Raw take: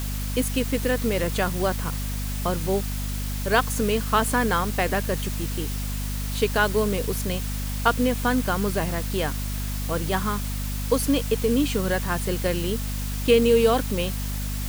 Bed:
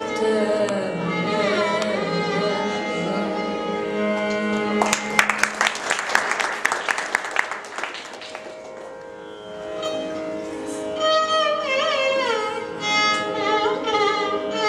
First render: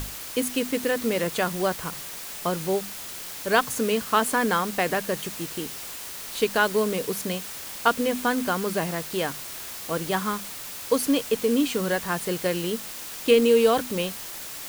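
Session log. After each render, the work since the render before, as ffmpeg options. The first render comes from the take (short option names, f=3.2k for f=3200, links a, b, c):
-af "bandreject=f=50:t=h:w=6,bandreject=f=100:t=h:w=6,bandreject=f=150:t=h:w=6,bandreject=f=200:t=h:w=6,bandreject=f=250:t=h:w=6"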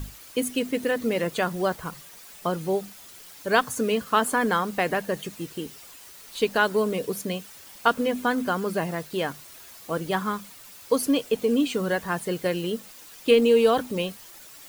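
-af "afftdn=nr=11:nf=-37"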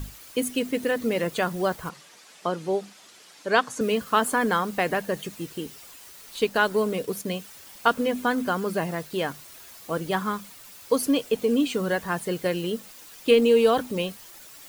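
-filter_complex "[0:a]asettb=1/sr,asplit=3[a][b][c];[a]atrim=end=1.894[d];[b]atrim=start=1.89:end=3.81,asetpts=PTS-STARTPTS,afade=t=in:d=0.004:c=qsin,afade=t=out:st=1.916:d=0.004:c=qsin,highpass=200,lowpass=7.2k[e];[c]atrim=start=3.806[f];[d][e]acrossfade=d=0.004:c1=hsin:c2=qsin[g];[g][f]acrossfade=d=0.004:c1=qsin:c2=hsin,asettb=1/sr,asplit=3[h][i][j];[h]atrim=end=6.364[k];[i]atrim=start=6.36:end=7.27,asetpts=PTS-STARTPTS,afade=t=in:d=0.004:c=qsin,afade=t=out:st=0.906:d=0.004:c=qsin,aeval=exprs='sgn(val(0))*max(abs(val(0))-0.00299,0)':c=same[l];[j]atrim=start=7.266[m];[k][l]acrossfade=d=0.004:c1=hsin:c2=qsin[n];[n][m]acrossfade=d=0.004:c1=qsin:c2=hsin"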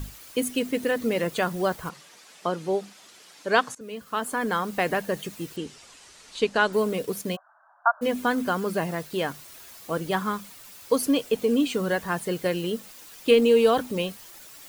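-filter_complex "[0:a]asettb=1/sr,asplit=3[a][b][c];[a]atrim=end=5.564[d];[b]atrim=start=5.56:end=6.73,asetpts=PTS-STARTPTS,afade=t=in:d=0.004:c=qsin,afade=t=out:st=1.166:d=0.004:c=qsin,lowpass=f=8.4k:w=0.5412,lowpass=f=8.4k:w=1.3066[e];[c]atrim=start=6.726[f];[d][e]acrossfade=d=0.004:c1=hsin:c2=qsin[g];[g][f]acrossfade=d=0.004:c1=qsin:c2=hsin,asplit=3[h][i][j];[h]afade=t=out:st=7.35:d=0.02[k];[i]asuperpass=centerf=990:order=20:qfactor=0.99,afade=t=in:st=7.35:d=0.02,afade=t=out:st=8.01:d=0.02[l];[j]afade=t=in:st=8.01:d=0.02[m];[k][l][m]amix=inputs=3:normalize=0,asplit=2[n][o];[n]atrim=end=3.75,asetpts=PTS-STARTPTS,afade=t=out:st=3.746:d=0.004:c=hsin:silence=0.0944061[p];[o]atrim=start=3.75,asetpts=PTS-STARTPTS,afade=t=in:d=1.1:silence=0.0944061[q];[p][q]concat=n=2:v=0:a=1"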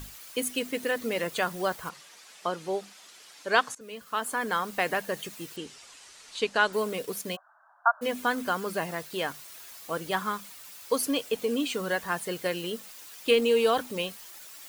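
-af "lowshelf=f=460:g=-9.5"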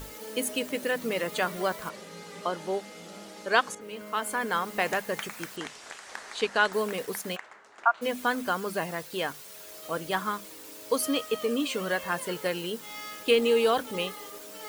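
-filter_complex "[1:a]volume=-22dB[a];[0:a][a]amix=inputs=2:normalize=0"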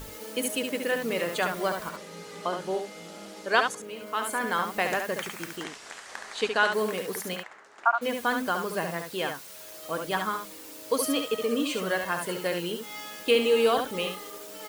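-af "aecho=1:1:70:0.501"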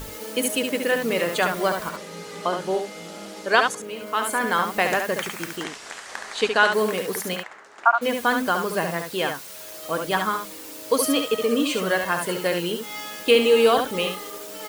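-af "volume=5.5dB,alimiter=limit=-3dB:level=0:latency=1"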